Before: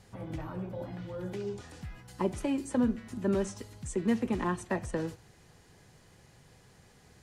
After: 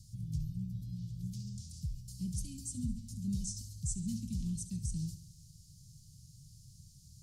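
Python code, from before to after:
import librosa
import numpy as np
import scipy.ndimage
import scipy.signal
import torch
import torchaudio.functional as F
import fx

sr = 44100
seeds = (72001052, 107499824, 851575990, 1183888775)

y = scipy.signal.sosfilt(scipy.signal.ellip(3, 1.0, 50, [150.0, 5000.0], 'bandstop', fs=sr, output='sos'), x)
y = fx.echo_feedback(y, sr, ms=70, feedback_pct=54, wet_db=-13)
y = y * librosa.db_to_amplitude(5.0)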